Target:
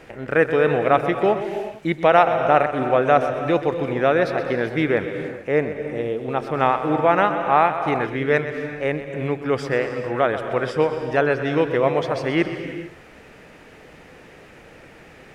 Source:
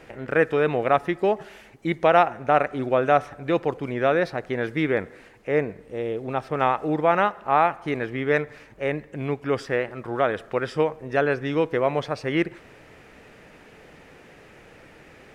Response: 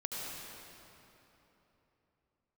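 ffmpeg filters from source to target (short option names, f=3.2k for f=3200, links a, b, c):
-filter_complex "[0:a]asplit=2[a][b];[1:a]atrim=start_sample=2205,afade=t=out:st=0.38:d=0.01,atrim=end_sample=17199,adelay=127[c];[b][c]afir=irnorm=-1:irlink=0,volume=-8.5dB[d];[a][d]amix=inputs=2:normalize=0,volume=2.5dB"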